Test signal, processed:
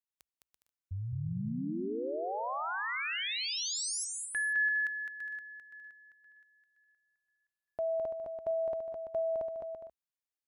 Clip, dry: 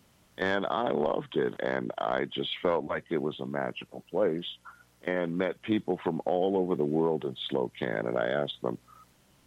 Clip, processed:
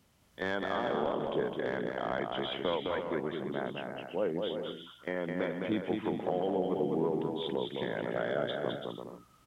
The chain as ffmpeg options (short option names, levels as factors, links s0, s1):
-filter_complex "[0:a]equalizer=f=61:t=o:w=0.62:g=5.5,asplit=2[s0][s1];[s1]aecho=0:1:210|336|411.6|457|484.2:0.631|0.398|0.251|0.158|0.1[s2];[s0][s2]amix=inputs=2:normalize=0,volume=0.531"